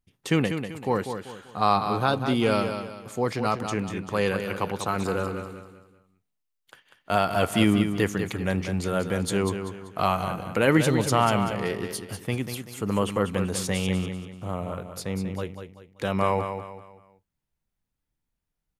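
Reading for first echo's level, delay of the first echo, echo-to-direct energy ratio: −8.0 dB, 193 ms, −7.5 dB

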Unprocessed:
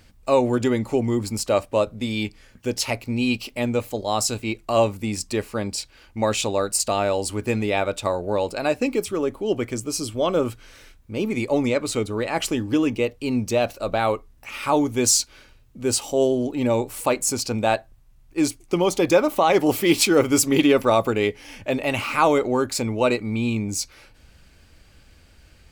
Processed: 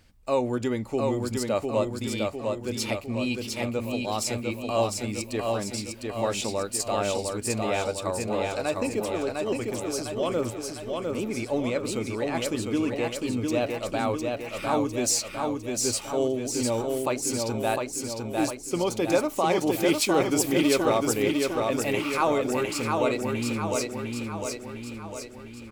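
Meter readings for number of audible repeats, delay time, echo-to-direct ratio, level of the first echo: 7, 704 ms, −2.0 dB, −3.5 dB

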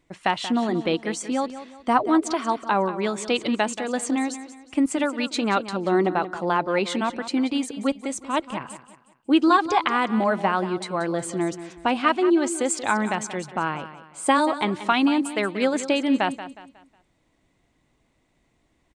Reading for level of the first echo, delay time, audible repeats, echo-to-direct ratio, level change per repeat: −13.0 dB, 182 ms, 3, −12.5 dB, −8.5 dB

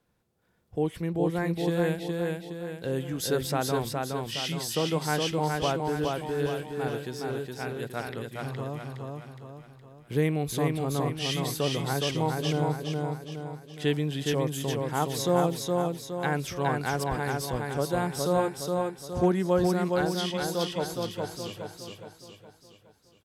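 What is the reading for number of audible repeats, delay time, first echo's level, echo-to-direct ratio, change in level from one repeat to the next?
5, 416 ms, −3.0 dB, −2.0 dB, −6.5 dB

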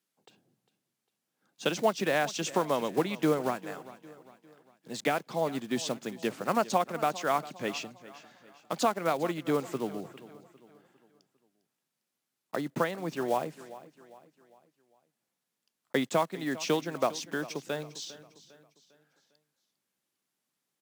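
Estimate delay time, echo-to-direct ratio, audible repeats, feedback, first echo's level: 402 ms, −16.5 dB, 3, 43%, −17.5 dB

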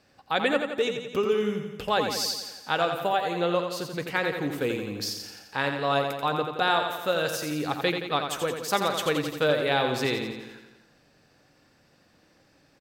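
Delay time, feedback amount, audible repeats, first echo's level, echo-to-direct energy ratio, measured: 86 ms, 59%, 7, −6.5 dB, −4.5 dB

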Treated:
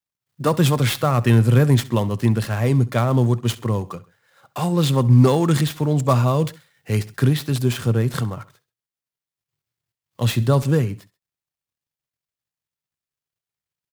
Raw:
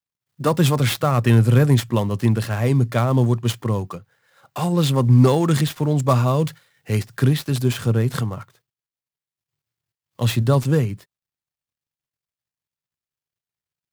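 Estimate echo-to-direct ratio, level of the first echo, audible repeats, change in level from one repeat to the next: −18.5 dB, −19.5 dB, 2, −6.5 dB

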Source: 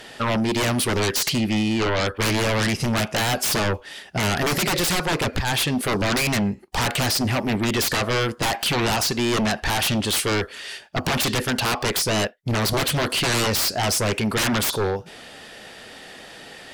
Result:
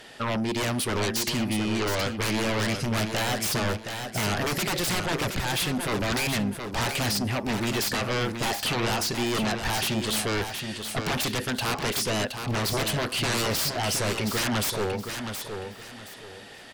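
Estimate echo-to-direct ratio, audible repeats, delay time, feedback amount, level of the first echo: −6.5 dB, 3, 720 ms, 28%, −7.0 dB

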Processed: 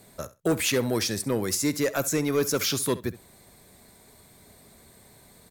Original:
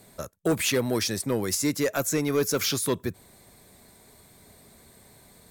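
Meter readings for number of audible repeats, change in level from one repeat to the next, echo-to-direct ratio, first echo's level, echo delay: 2, −16.0 dB, −17.0 dB, −17.0 dB, 66 ms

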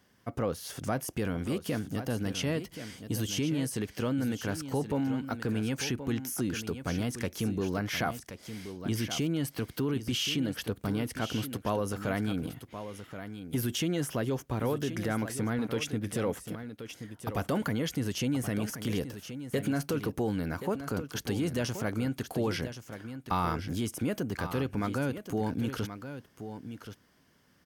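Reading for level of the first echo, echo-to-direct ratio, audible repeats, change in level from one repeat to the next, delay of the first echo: −10.5 dB, −10.5 dB, 1, repeats not evenly spaced, 1,077 ms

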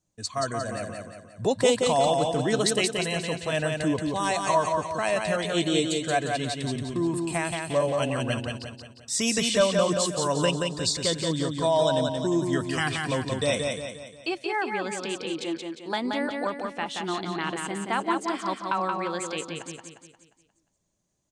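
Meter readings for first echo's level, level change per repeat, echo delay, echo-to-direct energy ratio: −4.0 dB, −6.5 dB, 177 ms, −3.0 dB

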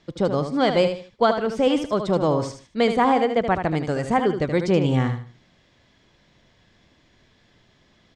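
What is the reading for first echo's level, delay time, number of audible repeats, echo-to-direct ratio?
−8.0 dB, 76 ms, 3, −7.5 dB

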